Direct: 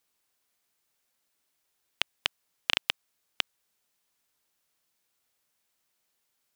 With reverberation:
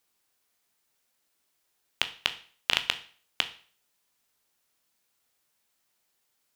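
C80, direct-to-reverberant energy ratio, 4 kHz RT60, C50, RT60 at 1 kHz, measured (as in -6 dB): 19.0 dB, 8.5 dB, 0.45 s, 15.0 dB, 0.45 s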